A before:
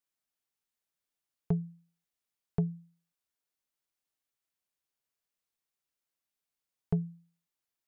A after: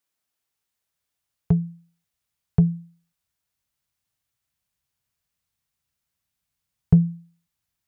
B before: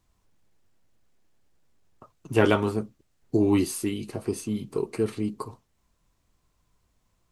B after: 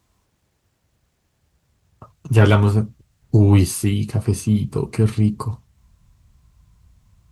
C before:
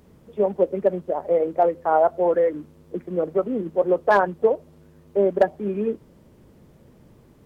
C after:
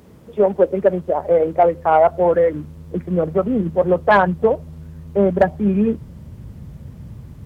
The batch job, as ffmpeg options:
ffmpeg -i in.wav -af "highpass=64,asubboost=boost=9.5:cutoff=120,acontrast=84" out.wav

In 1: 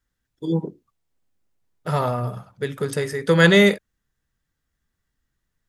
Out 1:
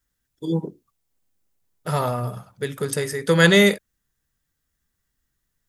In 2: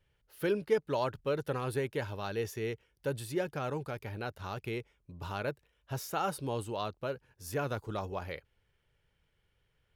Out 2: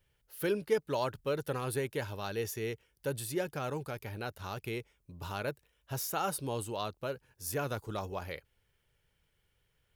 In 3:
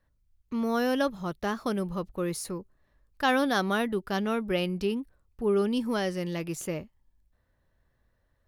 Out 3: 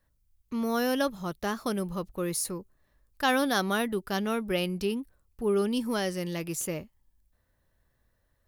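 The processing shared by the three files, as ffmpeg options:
ffmpeg -i in.wav -af "highshelf=frequency=6200:gain=10.5,volume=-1dB" out.wav

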